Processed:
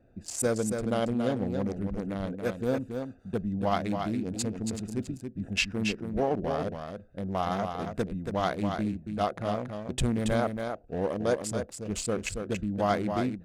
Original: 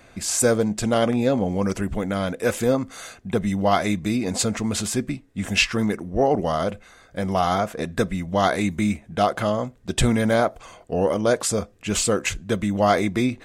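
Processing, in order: local Wiener filter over 41 samples; delay 278 ms -6 dB; trim -7.5 dB

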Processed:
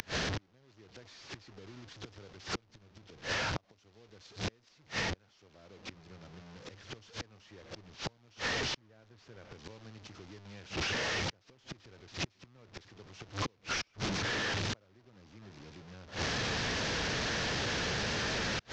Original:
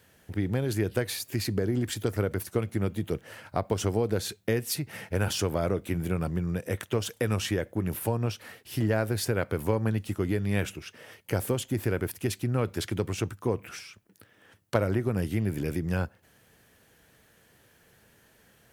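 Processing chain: one-bit delta coder 32 kbps, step -24.5 dBFS; inverted gate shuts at -27 dBFS, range -39 dB; three bands compressed up and down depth 70%; trim -2.5 dB

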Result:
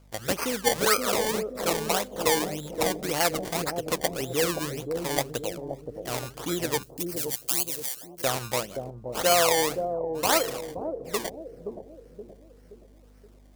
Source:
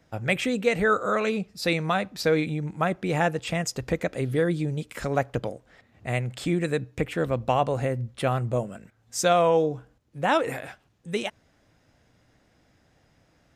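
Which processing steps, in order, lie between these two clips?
decimation with a swept rate 23×, swing 100% 1.8 Hz; tone controls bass -11 dB, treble +7 dB; hum 50 Hz, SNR 26 dB; 6.83–8.24 s: differentiator; bucket-brigade echo 523 ms, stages 2048, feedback 46%, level -4 dB; trim -1 dB

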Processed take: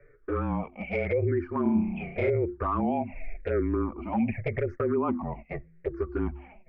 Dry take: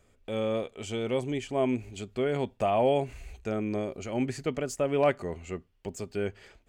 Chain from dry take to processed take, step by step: drifting ripple filter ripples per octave 0.53, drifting -0.87 Hz, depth 23 dB; elliptic low-pass 2.3 kHz, stop band 40 dB; de-hum 96.76 Hz, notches 4; 4.65–5.54 s: gate -39 dBFS, range -21 dB; frequency shift -29 Hz; touch-sensitive flanger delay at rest 7.1 ms, full sweep at -19 dBFS; 3.02–3.51 s: compression 1.5:1, threshold -37 dBFS, peak gain reduction 4 dB; peak limiter -23.5 dBFS, peak gain reduction 11 dB; 1.62–2.30 s: flutter echo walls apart 5.5 m, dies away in 0.66 s; warped record 78 rpm, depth 100 cents; trim +5 dB

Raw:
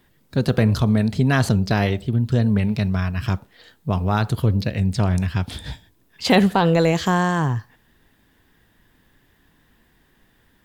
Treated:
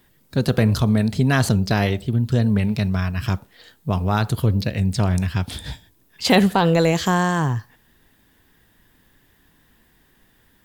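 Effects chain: treble shelf 6.1 kHz +6.5 dB

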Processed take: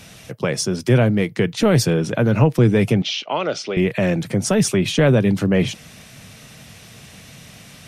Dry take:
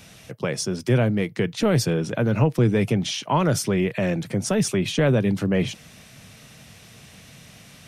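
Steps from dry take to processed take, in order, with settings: 3.02–3.77 s: cabinet simulation 460–5000 Hz, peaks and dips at 980 Hz -9 dB, 1.7 kHz -8 dB, 2.7 kHz +3 dB; trim +5 dB; MP3 80 kbps 48 kHz

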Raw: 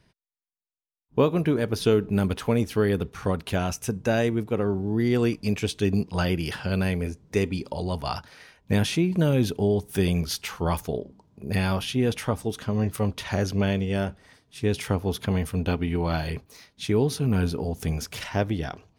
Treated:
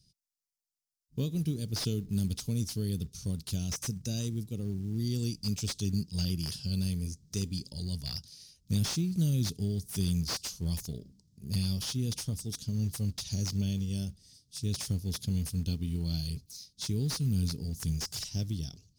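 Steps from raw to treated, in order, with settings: FFT filter 160 Hz 0 dB, 920 Hz -28 dB, 1.8 kHz -26 dB, 5 kHz +11 dB, 13 kHz +6 dB; short-mantissa float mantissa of 4-bit; slew-rate limiter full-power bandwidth 200 Hz; trim -4 dB

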